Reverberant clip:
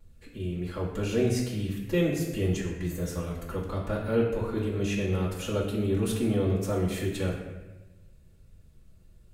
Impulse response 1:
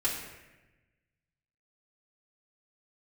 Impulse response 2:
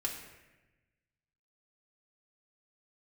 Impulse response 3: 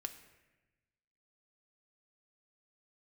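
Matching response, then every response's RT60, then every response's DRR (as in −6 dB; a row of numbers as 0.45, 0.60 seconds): 1; 1.1, 1.1, 1.1 seconds; −8.5, −2.5, 6.0 decibels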